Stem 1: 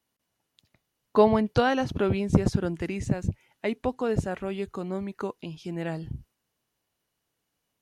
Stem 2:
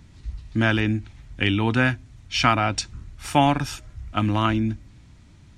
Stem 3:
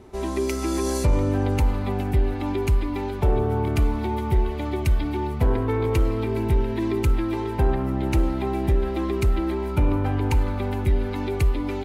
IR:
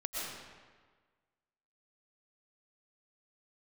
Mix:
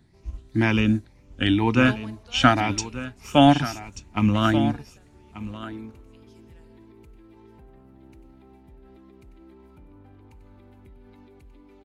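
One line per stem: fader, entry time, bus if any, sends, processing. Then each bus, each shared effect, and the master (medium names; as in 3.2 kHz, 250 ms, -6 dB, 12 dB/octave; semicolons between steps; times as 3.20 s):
-11.5 dB, 0.70 s, send -10 dB, echo send -15.5 dB, tilt EQ +4.5 dB/octave; random-step tremolo, depth 75%
+1.0 dB, 0.00 s, no send, echo send -10 dB, drifting ripple filter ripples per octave 0.81, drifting +2 Hz, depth 11 dB
-11.0 dB, 0.00 s, send -14 dB, echo send -10 dB, peak limiter -22.5 dBFS, peak gain reduction 11 dB; auto duck -11 dB, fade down 0.25 s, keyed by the second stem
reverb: on, RT60 1.5 s, pre-delay 80 ms
echo: delay 1185 ms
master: peaking EQ 220 Hz +4.5 dB 0.74 oct; upward expansion 1.5:1, over -36 dBFS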